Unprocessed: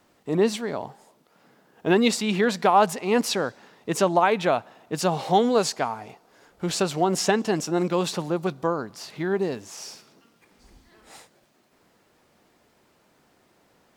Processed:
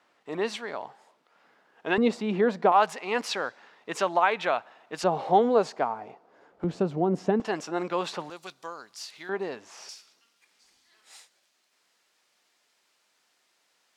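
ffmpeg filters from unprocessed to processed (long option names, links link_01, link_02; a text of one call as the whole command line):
ffmpeg -i in.wav -af "asetnsamples=nb_out_samples=441:pad=0,asendcmd='1.98 bandpass f 490;2.72 bandpass f 1700;5.04 bandpass f 620;6.64 bandpass f 230;7.4 bandpass f 1300;8.3 bandpass f 5600;9.29 bandpass f 1400;9.89 bandpass f 5200',bandpass=frequency=1700:width_type=q:width=0.6:csg=0" out.wav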